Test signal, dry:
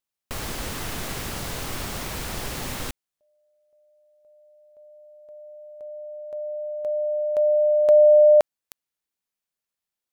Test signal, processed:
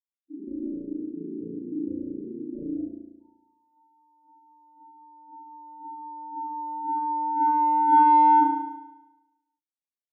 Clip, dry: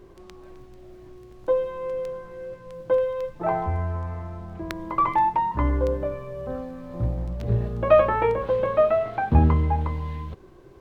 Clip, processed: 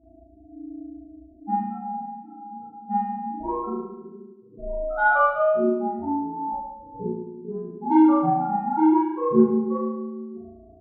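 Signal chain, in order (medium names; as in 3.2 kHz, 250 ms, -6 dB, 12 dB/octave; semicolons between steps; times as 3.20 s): loudest bins only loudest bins 2; ring modulator 300 Hz; in parallel at -11 dB: saturation -19.5 dBFS; on the sum: spring tank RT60 1 s, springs 35 ms, chirp 40 ms, DRR -10 dB; trim -5 dB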